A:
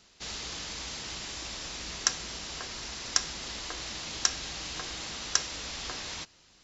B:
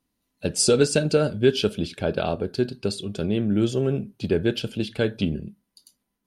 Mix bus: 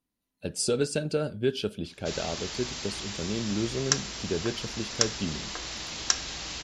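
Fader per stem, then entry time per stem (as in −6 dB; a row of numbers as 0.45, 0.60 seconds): +1.5, −8.0 decibels; 1.85, 0.00 seconds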